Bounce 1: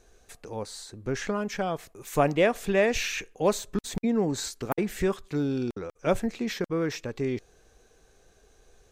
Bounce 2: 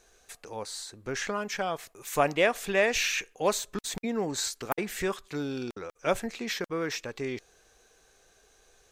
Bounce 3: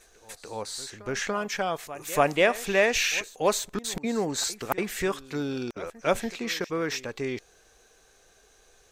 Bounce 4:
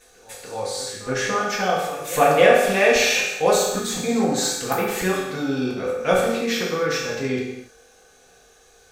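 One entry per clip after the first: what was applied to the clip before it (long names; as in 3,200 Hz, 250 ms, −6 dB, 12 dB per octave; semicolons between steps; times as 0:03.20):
low-shelf EQ 490 Hz −12 dB; level +3 dB
echo ahead of the sound 287 ms −17.5 dB; level +2.5 dB
convolution reverb, pre-delay 3 ms, DRR −6 dB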